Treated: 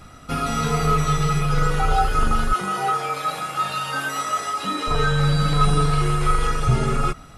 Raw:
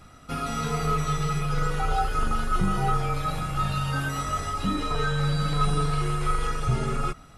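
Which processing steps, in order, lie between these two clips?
0:02.53–0:04.87: Bessel high-pass filter 460 Hz, order 2
level +6 dB

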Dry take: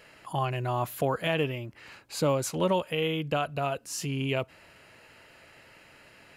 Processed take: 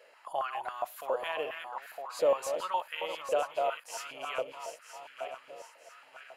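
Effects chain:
feedback delay that plays each chunk backwards 480 ms, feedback 63%, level −7.5 dB
high-pass on a step sequencer 7.3 Hz 530–1,500 Hz
level −8.5 dB

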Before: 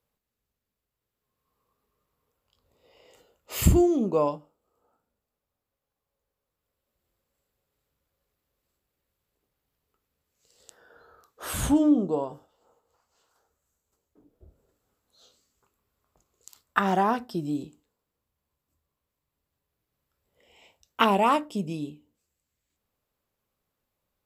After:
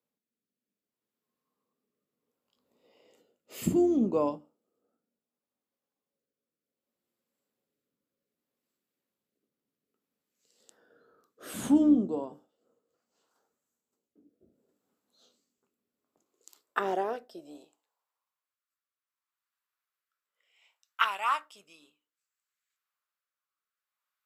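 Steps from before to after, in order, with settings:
sub-octave generator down 2 octaves, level −6 dB
rotating-speaker cabinet horn 0.65 Hz
high-pass filter sweep 230 Hz → 1,300 Hz, 0:15.92–0:18.65
level −5.5 dB

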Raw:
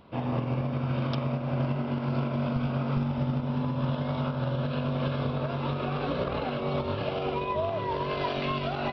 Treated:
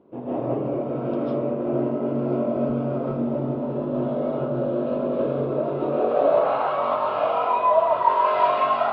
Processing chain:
band-pass filter sweep 370 Hz → 990 Hz, 0:05.67–0:06.46
comb and all-pass reverb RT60 0.45 s, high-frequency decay 0.55×, pre-delay 110 ms, DRR −9.5 dB
level +6 dB

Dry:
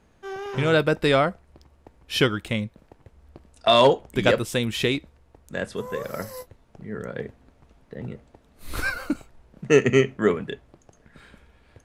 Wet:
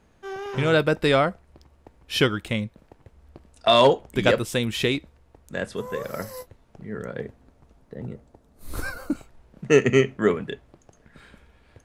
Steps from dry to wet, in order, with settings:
0:07.12–0:09.12: parametric band 2,600 Hz −2 dB → −12.5 dB 1.8 octaves

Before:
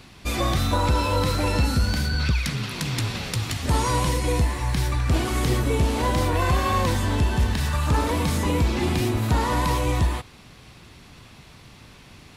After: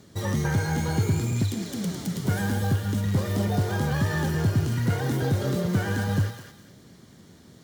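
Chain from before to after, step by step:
high-pass filter 60 Hz 12 dB per octave
low-shelf EQ 240 Hz +11.5 dB
notch filter 1,600 Hz, Q 6.7
change of speed 1.62×
in parallel at −9 dB: log-companded quantiser 4 bits
on the sum: flanger 0.56 Hz, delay 1.2 ms, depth 8.4 ms, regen +89%
on a send: feedback echo with a high-pass in the loop 210 ms, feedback 32%, high-pass 1,200 Hz, level −6 dB
on the sum: level −8 dB

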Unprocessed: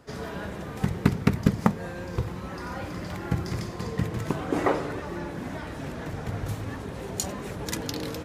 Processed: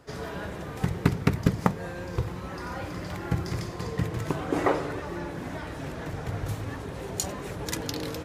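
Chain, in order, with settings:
parametric band 220 Hz −9 dB 0.21 octaves

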